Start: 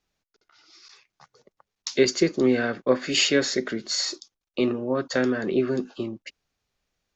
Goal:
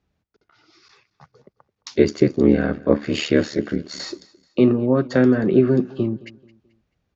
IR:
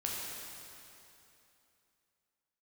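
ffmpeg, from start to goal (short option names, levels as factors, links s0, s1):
-filter_complex "[0:a]highpass=86,aemphasis=mode=reproduction:type=riaa,asplit=3[s0][s1][s2];[s0]afade=t=out:st=1.94:d=0.02[s3];[s1]aeval=exprs='val(0)*sin(2*PI*37*n/s)':c=same,afade=t=in:st=1.94:d=0.02,afade=t=out:st=3.98:d=0.02[s4];[s2]afade=t=in:st=3.98:d=0.02[s5];[s3][s4][s5]amix=inputs=3:normalize=0,aecho=1:1:217|434|651:0.0841|0.0303|0.0109,volume=1.41"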